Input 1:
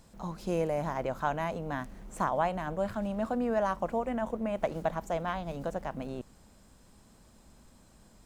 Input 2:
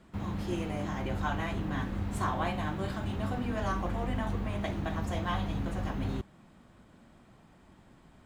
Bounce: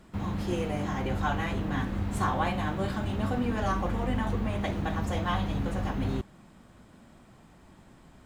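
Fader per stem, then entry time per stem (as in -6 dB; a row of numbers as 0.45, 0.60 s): -7.5, +3.0 dB; 0.00, 0.00 s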